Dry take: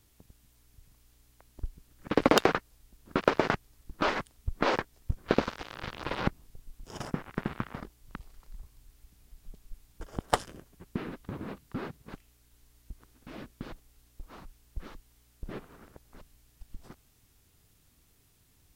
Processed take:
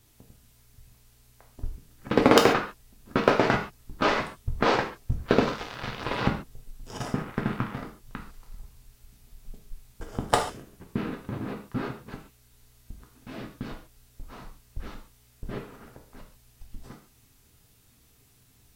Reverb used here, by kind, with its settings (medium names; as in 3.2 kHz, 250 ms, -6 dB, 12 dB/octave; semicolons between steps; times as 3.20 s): gated-style reverb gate 170 ms falling, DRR 1 dB; trim +2.5 dB